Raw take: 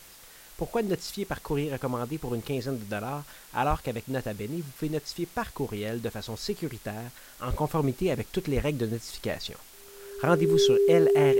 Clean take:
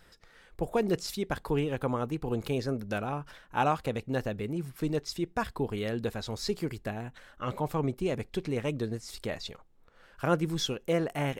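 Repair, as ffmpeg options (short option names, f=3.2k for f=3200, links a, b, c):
-filter_complex "[0:a]bandreject=f=400:w=30,asplit=3[a][b][c];[a]afade=t=out:st=3.69:d=0.02[d];[b]highpass=f=140:w=0.5412,highpass=f=140:w=1.3066,afade=t=in:st=3.69:d=0.02,afade=t=out:st=3.81:d=0.02[e];[c]afade=t=in:st=3.81:d=0.02[f];[d][e][f]amix=inputs=3:normalize=0,asplit=3[g][h][i];[g]afade=t=out:st=7.49:d=0.02[j];[h]highpass=f=140:w=0.5412,highpass=f=140:w=1.3066,afade=t=in:st=7.49:d=0.02,afade=t=out:st=7.61:d=0.02[k];[i]afade=t=in:st=7.61:d=0.02[l];[j][k][l]amix=inputs=3:normalize=0,asplit=3[m][n][o];[m]afade=t=out:st=8.55:d=0.02[p];[n]highpass=f=140:w=0.5412,highpass=f=140:w=1.3066,afade=t=in:st=8.55:d=0.02,afade=t=out:st=8.67:d=0.02[q];[o]afade=t=in:st=8.67:d=0.02[r];[p][q][r]amix=inputs=3:normalize=0,afwtdn=0.0032,asetnsamples=n=441:p=0,asendcmd='7.53 volume volume -3.5dB',volume=0dB"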